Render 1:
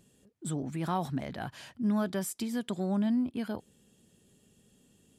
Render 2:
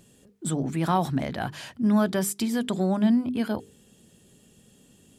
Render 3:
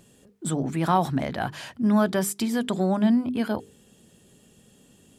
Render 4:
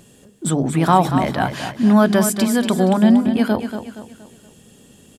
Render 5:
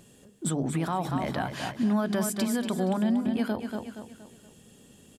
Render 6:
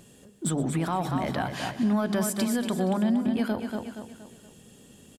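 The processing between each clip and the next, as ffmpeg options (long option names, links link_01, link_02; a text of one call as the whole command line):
ffmpeg -i in.wav -af "bandreject=frequency=50:width_type=h:width=6,bandreject=frequency=100:width_type=h:width=6,bandreject=frequency=150:width_type=h:width=6,bandreject=frequency=200:width_type=h:width=6,bandreject=frequency=250:width_type=h:width=6,bandreject=frequency=300:width_type=h:width=6,bandreject=frequency=350:width_type=h:width=6,bandreject=frequency=400:width_type=h:width=6,bandreject=frequency=450:width_type=h:width=6,volume=8dB" out.wav
ffmpeg -i in.wav -af "equalizer=frequency=950:width=0.52:gain=3" out.wav
ffmpeg -i in.wav -af "aecho=1:1:235|470|705|940:0.355|0.142|0.0568|0.0227,volume=7.5dB" out.wav
ffmpeg -i in.wav -af "alimiter=limit=-12dB:level=0:latency=1:release=197,volume=-6.5dB" out.wav
ffmpeg -i in.wav -filter_complex "[0:a]aecho=1:1:122:0.126,asplit=2[link_01][link_02];[link_02]asoftclip=type=tanh:threshold=-29dB,volume=-11.5dB[link_03];[link_01][link_03]amix=inputs=2:normalize=0" out.wav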